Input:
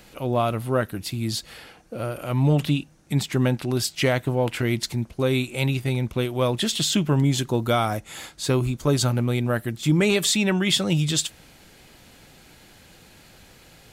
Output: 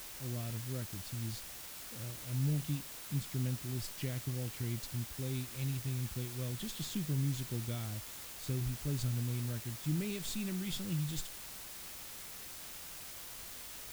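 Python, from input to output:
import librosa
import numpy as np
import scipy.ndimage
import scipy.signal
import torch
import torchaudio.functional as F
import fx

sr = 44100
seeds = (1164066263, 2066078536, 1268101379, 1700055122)

p1 = fx.tracing_dist(x, sr, depth_ms=0.029)
p2 = fx.tone_stack(p1, sr, knobs='10-0-1')
p3 = fx.quant_dither(p2, sr, seeds[0], bits=6, dither='triangular')
p4 = p2 + F.gain(torch.from_numpy(p3), -10.0).numpy()
y = F.gain(torch.from_numpy(p4), -1.5).numpy()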